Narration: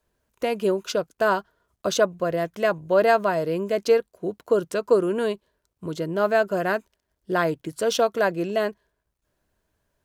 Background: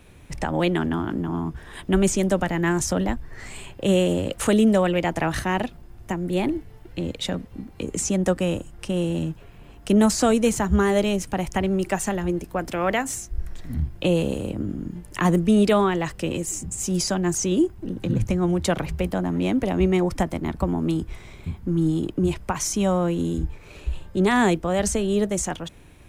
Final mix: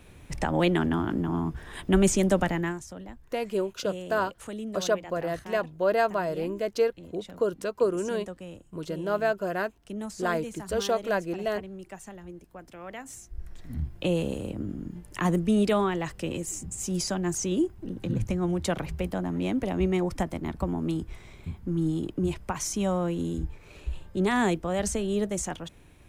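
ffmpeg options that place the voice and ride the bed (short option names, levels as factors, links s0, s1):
-filter_complex "[0:a]adelay=2900,volume=0.531[s0];[1:a]volume=3.76,afade=t=out:st=2.47:d=0.33:silence=0.141254,afade=t=in:st=12.91:d=1:silence=0.223872[s1];[s0][s1]amix=inputs=2:normalize=0"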